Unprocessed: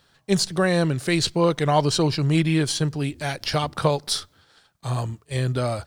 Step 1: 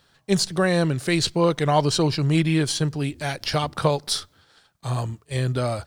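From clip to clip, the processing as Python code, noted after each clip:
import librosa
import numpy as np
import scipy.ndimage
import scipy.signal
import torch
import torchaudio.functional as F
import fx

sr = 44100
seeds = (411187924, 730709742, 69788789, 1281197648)

y = x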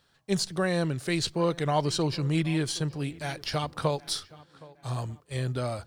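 y = fx.echo_tape(x, sr, ms=769, feedback_pct=45, wet_db=-20, lp_hz=3000.0, drive_db=8.0, wow_cents=20)
y = y * 10.0 ** (-6.5 / 20.0)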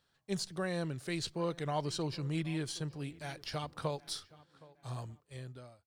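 y = fx.fade_out_tail(x, sr, length_s=0.92)
y = y * 10.0 ** (-9.0 / 20.0)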